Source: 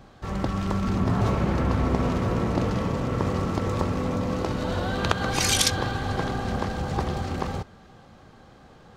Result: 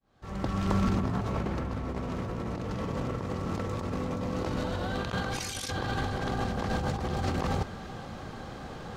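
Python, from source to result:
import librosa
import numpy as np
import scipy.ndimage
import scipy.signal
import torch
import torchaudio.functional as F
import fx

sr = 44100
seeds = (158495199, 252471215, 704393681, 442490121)

y = fx.fade_in_head(x, sr, length_s=2.34)
y = fx.over_compress(y, sr, threshold_db=-34.0, ratio=-1.0)
y = y * librosa.db_to_amplitude(2.5)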